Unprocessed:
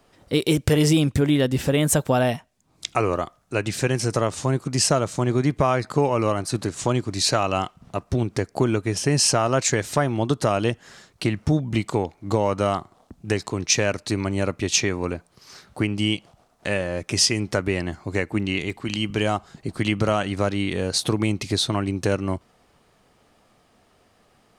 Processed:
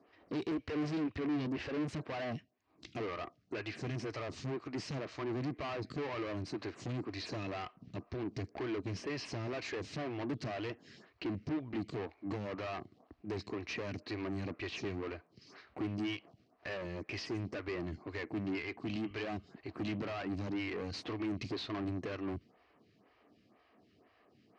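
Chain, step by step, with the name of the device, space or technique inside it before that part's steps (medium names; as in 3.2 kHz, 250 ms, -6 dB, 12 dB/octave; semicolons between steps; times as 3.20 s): vibe pedal into a guitar amplifier (lamp-driven phase shifter 2 Hz; valve stage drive 34 dB, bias 0.5; cabinet simulation 90–4400 Hz, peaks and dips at 160 Hz -4 dB, 300 Hz +4 dB, 540 Hz -6 dB, 860 Hz -7 dB, 1.4 kHz -6 dB, 3.5 kHz -7 dB)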